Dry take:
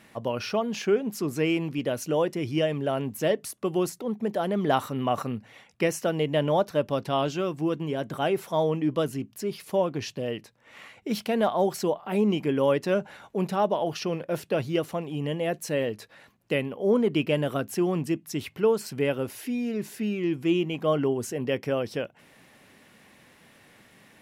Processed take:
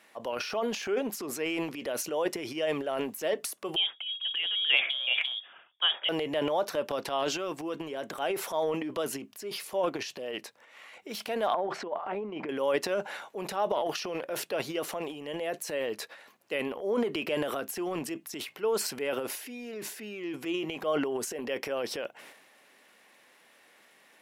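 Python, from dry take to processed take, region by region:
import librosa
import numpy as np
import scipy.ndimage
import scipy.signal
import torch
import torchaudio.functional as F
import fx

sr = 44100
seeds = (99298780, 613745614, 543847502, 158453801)

y = fx.chain(x, sr, fx.freq_invert(carrier_hz=3500),
    fx.band_widen(depth_pct=70), at=(3.76, 6.09))
y = fx.chain(y, sr, fx.lowpass(hz=1900.0, slope=12),
    fx.over_compress(threshold_db=-27.0, ratio=-0.5), at=(11.54, 12.49))
y = scipy.signal.sosfilt(scipy.signal.butter(2, 440.0, 'highpass', fs=sr, output='sos'), y)
y = fx.transient(y, sr, attack_db=-1, sustain_db=11)
y = y * librosa.db_to_amplitude(-3.5)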